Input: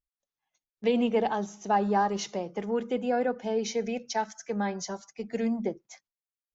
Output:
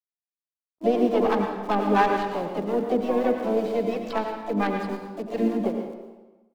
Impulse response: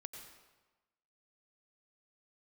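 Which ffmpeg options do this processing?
-filter_complex "[0:a]bandreject=f=1.4k:w=19,aresample=11025,aeval=exprs='sgn(val(0))*max(abs(val(0))-0.00335,0)':c=same,aresample=44100,dynaudnorm=f=120:g=7:m=14dB,acrossover=split=500[a][b];[a]aeval=exprs='val(0)*(1-0.7/2+0.7/2*cos(2*PI*5.7*n/s))':c=same[c];[b]aeval=exprs='val(0)*(1-0.7/2-0.7/2*cos(2*PI*5.7*n/s))':c=same[d];[c][d]amix=inputs=2:normalize=0,acrossover=split=290|830[e][f][g];[g]acrusher=bits=4:dc=4:mix=0:aa=0.000001[h];[e][f][h]amix=inputs=3:normalize=0,asplit=3[i][j][k];[j]asetrate=55563,aresample=44100,atempo=0.793701,volume=-12dB[l];[k]asetrate=66075,aresample=44100,atempo=0.66742,volume=-8dB[m];[i][l][m]amix=inputs=3:normalize=0,acrossover=split=3800[n][o];[o]acompressor=threshold=-49dB:ratio=4:attack=1:release=60[p];[n][p]amix=inputs=2:normalize=0[q];[1:a]atrim=start_sample=2205[r];[q][r]afir=irnorm=-1:irlink=0"

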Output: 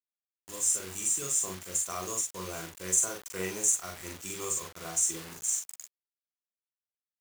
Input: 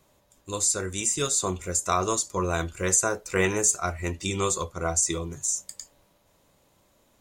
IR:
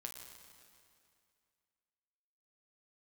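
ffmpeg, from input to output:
-filter_complex "[0:a]acrossover=split=100[a][b];[a]acompressor=threshold=-48dB:ratio=6[c];[c][b]amix=inputs=2:normalize=0,asuperstop=centerf=4200:order=12:qfactor=2.5,equalizer=f=1.8k:w=0.34:g=-14,bandreject=f=50:t=h:w=6,bandreject=f=100:t=h:w=6,bandreject=f=150:t=h:w=6,acrusher=bits=6:mix=0:aa=0.000001,tiltshelf=f=640:g=-7,asplit=2[d][e];[e]adelay=43,volume=-2.5dB[f];[d][f]amix=inputs=2:normalize=0,volume=-6.5dB"

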